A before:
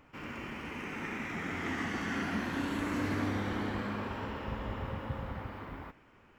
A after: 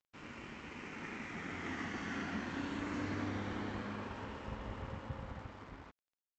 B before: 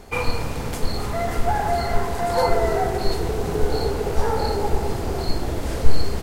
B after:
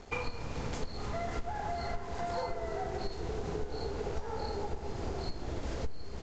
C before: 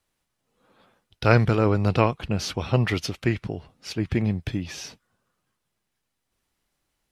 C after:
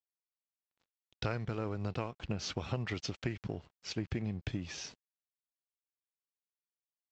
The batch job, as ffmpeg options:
ffmpeg -i in.wav -af "acompressor=threshold=-26dB:ratio=12,aresample=16000,aeval=exprs='sgn(val(0))*max(abs(val(0))-0.00251,0)':channel_layout=same,aresample=44100,volume=-5dB" out.wav

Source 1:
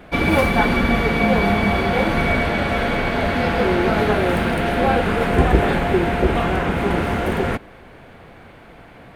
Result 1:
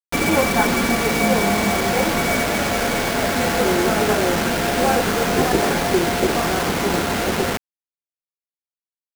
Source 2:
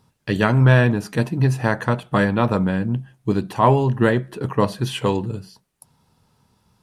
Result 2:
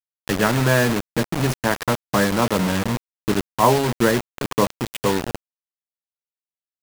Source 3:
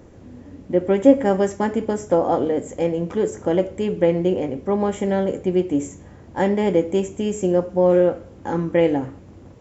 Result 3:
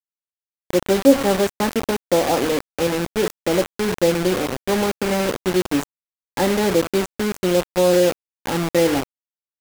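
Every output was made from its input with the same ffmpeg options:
ffmpeg -i in.wav -filter_complex "[0:a]highshelf=frequency=5700:gain=-5,acrossover=split=160|2900[link_01][link_02][link_03];[link_01]acompressor=threshold=-32dB:ratio=6[link_04];[link_03]flanger=delay=1.8:depth=3.4:regen=-33:speed=0.21:shape=triangular[link_05];[link_04][link_02][link_05]amix=inputs=3:normalize=0,acrusher=bits=3:mix=0:aa=0.000001" out.wav

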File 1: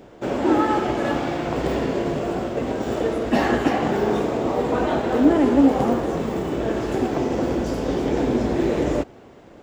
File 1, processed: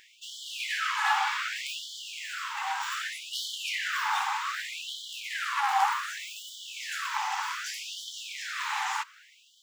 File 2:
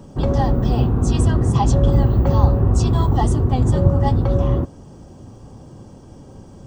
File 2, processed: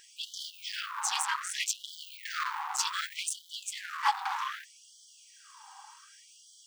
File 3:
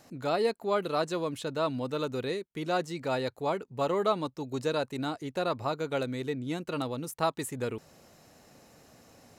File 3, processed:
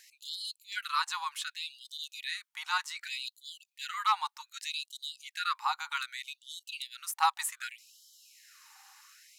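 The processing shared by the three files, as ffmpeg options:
ffmpeg -i in.wav -af "volume=17.5dB,asoftclip=hard,volume=-17.5dB,afftfilt=real='re*gte(b*sr/1024,740*pow(3000/740,0.5+0.5*sin(2*PI*0.65*pts/sr)))':imag='im*gte(b*sr/1024,740*pow(3000/740,0.5+0.5*sin(2*PI*0.65*pts/sr)))':win_size=1024:overlap=0.75,volume=5dB" out.wav

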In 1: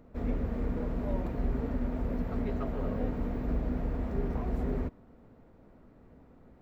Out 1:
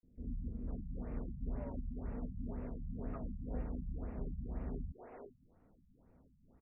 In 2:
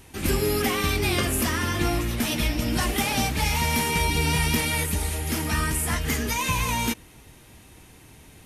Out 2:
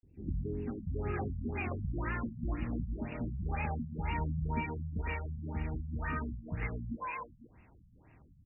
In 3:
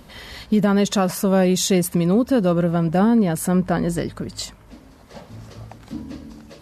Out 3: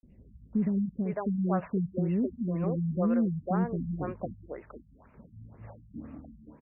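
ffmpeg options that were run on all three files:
ffmpeg -i in.wav -filter_complex "[0:a]acrossover=split=390|4500[link_01][link_02][link_03];[link_01]adelay=30[link_04];[link_02]adelay=530[link_05];[link_04][link_05][link_03]amix=inputs=3:normalize=0,afftfilt=real='re*lt(b*sr/1024,210*pow(2900/210,0.5+0.5*sin(2*PI*2*pts/sr)))':imag='im*lt(b*sr/1024,210*pow(2900/210,0.5+0.5*sin(2*PI*2*pts/sr)))':win_size=1024:overlap=0.75,volume=-9dB" out.wav

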